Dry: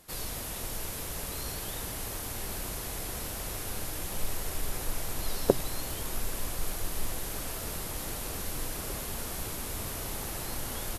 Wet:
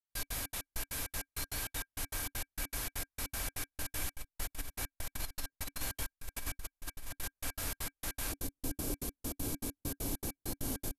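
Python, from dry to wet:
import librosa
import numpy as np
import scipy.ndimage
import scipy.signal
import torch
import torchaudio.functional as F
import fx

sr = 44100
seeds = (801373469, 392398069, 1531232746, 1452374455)

y = fx.peak_eq(x, sr, hz=fx.steps((0.0, 290.0), (8.32, 1700.0)), db=-11.0, octaves=2.0)
y = fx.over_compress(y, sr, threshold_db=-34.0, ratio=-1.0)
y = fx.step_gate(y, sr, bpm=198, pattern='..x.xx.x', floor_db=-60.0, edge_ms=4.5)
y = fx.small_body(y, sr, hz=(280.0, 1600.0, 2300.0), ring_ms=70, db=12)
y = F.gain(torch.from_numpy(y), -1.5).numpy()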